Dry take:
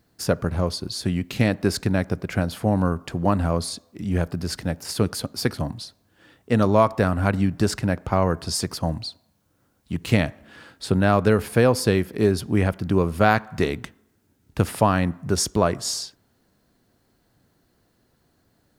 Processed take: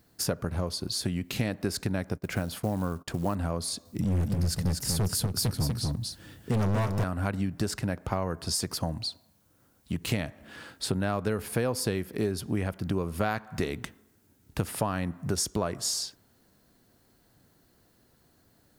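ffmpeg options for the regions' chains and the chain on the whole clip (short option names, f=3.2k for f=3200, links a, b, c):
-filter_complex "[0:a]asettb=1/sr,asplit=3[a][b][c];[a]atrim=end=2.174[d];[b]atrim=start=2.17:end=3.35,asetpts=PTS-STARTPTS,afade=t=in:d=0.004:c=qsin,afade=t=out:st=1.176:d=0.004:c=qsin,agate=range=-21dB:threshold=-41dB:ratio=16:release=100:detection=peak,acrusher=bits=7:mode=log:mix=0:aa=0.000001[e];[c]atrim=start=3.346[f];[d][e]acrossfade=d=0.004:c1=hsin:c2=qsin[g];[g][f]acrossfade=d=0.004:c1=qsin:c2=hsin,asettb=1/sr,asplit=3[h][i][j];[h]atrim=end=3.854[k];[i]atrim=start=3.85:end=7.04,asetpts=PTS-STARTPTS,afade=t=in:d=0.004:c=qsin,afade=t=out:st=3.186:d=0.004:c=qsin,bass=f=250:g=13,treble=f=4k:g=6,volume=15dB,asoftclip=hard,volume=-15dB,aecho=1:1:243:0.596,atrim=end_sample=140679[l];[j]atrim=start=7.036[m];[k][l]acrossfade=d=0.004:c1=hsin:c2=qsin[n];[n][m]acrossfade=d=0.004:c1=qsin:c2=hsin,highshelf=f=7.3k:g=6.5,acompressor=threshold=-28dB:ratio=3"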